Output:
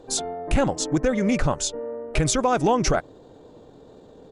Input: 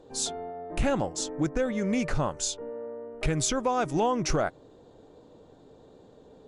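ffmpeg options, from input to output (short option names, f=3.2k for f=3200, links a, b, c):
-af "atempo=1.5,volume=6dB"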